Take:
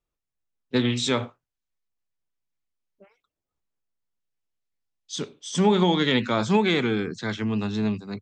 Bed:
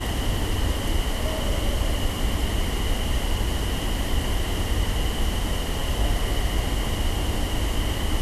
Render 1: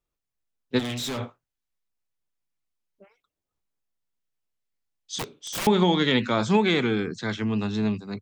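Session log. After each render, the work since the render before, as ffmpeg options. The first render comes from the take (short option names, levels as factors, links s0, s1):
-filter_complex "[0:a]asplit=3[s0][s1][s2];[s0]afade=t=out:st=0.78:d=0.02[s3];[s1]asoftclip=type=hard:threshold=0.0376,afade=t=in:st=0.78:d=0.02,afade=t=out:st=1.18:d=0.02[s4];[s2]afade=t=in:st=1.18:d=0.02[s5];[s3][s4][s5]amix=inputs=3:normalize=0,asettb=1/sr,asplit=3[s6][s7][s8];[s6]atrim=end=5.184[s9];[s7]atrim=start=5.18:end=5.67,asetpts=PTS-STARTPTS,afade=t=in:d=0.004:c=qsin,afade=t=out:st=0.486:d=0.004:c=qsin,aeval=exprs='(mod(16.8*val(0)+1,2)-1)/16.8':c=same[s10];[s8]atrim=start=5.666[s11];[s9][s10]acrossfade=d=0.004:c1=hsin:c2=qsin[s12];[s12][s11]acrossfade=d=0.004:c1=qsin:c2=hsin"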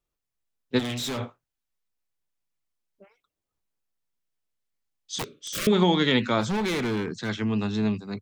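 -filter_complex "[0:a]asplit=3[s0][s1][s2];[s0]afade=t=out:st=5.24:d=0.02[s3];[s1]asuperstop=centerf=840:order=8:qfactor=1.8,afade=t=in:st=5.24:d=0.02,afade=t=out:st=5.71:d=0.02[s4];[s2]afade=t=in:st=5.71:d=0.02[s5];[s3][s4][s5]amix=inputs=3:normalize=0,asplit=3[s6][s7][s8];[s6]afade=t=out:st=6.4:d=0.02[s9];[s7]volume=15.8,asoftclip=hard,volume=0.0631,afade=t=in:st=6.4:d=0.02,afade=t=out:st=7.28:d=0.02[s10];[s8]afade=t=in:st=7.28:d=0.02[s11];[s9][s10][s11]amix=inputs=3:normalize=0"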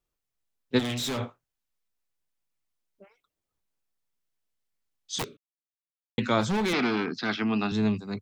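-filter_complex "[0:a]asettb=1/sr,asplit=3[s0][s1][s2];[s0]atrim=end=6.734[s3];[s1]atrim=start=6.73:end=7.72,asetpts=PTS-STARTPTS,afade=t=in:d=0.004:c=qsin,afade=t=out:st=0.986:d=0.004:c=qsin,highpass=200,equalizer=f=260:t=q:w=4:g=6,equalizer=f=510:t=q:w=4:g=-5,equalizer=f=730:t=q:w=4:g=8,equalizer=f=1300:t=q:w=4:g=8,equalizer=f=2500:t=q:w=4:g=6,equalizer=f=4900:t=q:w=4:g=10,lowpass=f=5000:w=0.5412,lowpass=f=5000:w=1.3066[s4];[s2]atrim=start=7.716[s5];[s3][s4]acrossfade=d=0.004:c1=hsin:c2=qsin[s6];[s6][s5]acrossfade=d=0.004:c1=qsin:c2=hsin,asplit=3[s7][s8][s9];[s7]atrim=end=5.37,asetpts=PTS-STARTPTS,afade=t=out:st=5.366:d=0.004:c=hsin[s10];[s8]atrim=start=5.37:end=6.18,asetpts=PTS-STARTPTS,volume=0[s11];[s9]atrim=start=6.18,asetpts=PTS-STARTPTS,afade=t=in:d=0.004:c=hsin[s12];[s10][s11][s12]concat=n=3:v=0:a=1"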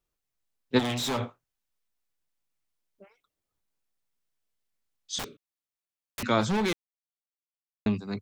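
-filter_complex "[0:a]asettb=1/sr,asplit=3[s0][s1][s2];[s0]atrim=end=0.764[s3];[s1]atrim=start=0.76:end=1.17,asetpts=PTS-STARTPTS,afade=t=in:d=0.004:c=qsin,afade=t=out:st=0.406:d=0.004:c=qsin,equalizer=f=880:w=1.5:g=8[s4];[s2]atrim=start=1.166[s5];[s3][s4]acrossfade=d=0.004:c1=hsin:c2=qsin[s6];[s6][s5]acrossfade=d=0.004:c1=qsin:c2=hsin,asettb=1/sr,asplit=3[s7][s8][s9];[s7]atrim=end=5.194[s10];[s8]atrim=start=5.19:end=6.23,asetpts=PTS-STARTPTS,afade=t=in:d=0.004:c=qsin,afade=t=out:st=1.036:d=0.004:c=qsin,aeval=exprs='(mod(29.9*val(0)+1,2)-1)/29.9':c=same[s11];[s9]atrim=start=6.226[s12];[s10][s11]acrossfade=d=0.004:c1=hsin:c2=qsin[s13];[s13][s12]acrossfade=d=0.004:c1=qsin:c2=hsin,asplit=3[s14][s15][s16];[s14]atrim=end=6.73,asetpts=PTS-STARTPTS,afade=t=out:st=6.726:d=0.004:c=hsin[s17];[s15]atrim=start=6.73:end=7.86,asetpts=PTS-STARTPTS,volume=0[s18];[s16]atrim=start=7.86,asetpts=PTS-STARTPTS,afade=t=in:d=0.004:c=hsin[s19];[s17][s18][s19]concat=n=3:v=0:a=1"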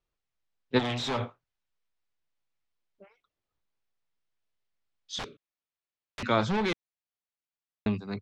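-af "lowpass=4400,equalizer=f=250:w=1.5:g=-3"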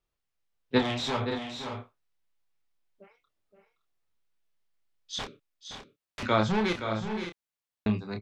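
-filter_complex "[0:a]asplit=2[s0][s1];[s1]adelay=28,volume=0.447[s2];[s0][s2]amix=inputs=2:normalize=0,aecho=1:1:520|566:0.335|0.299"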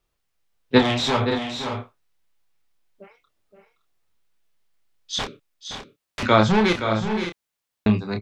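-af "volume=2.66"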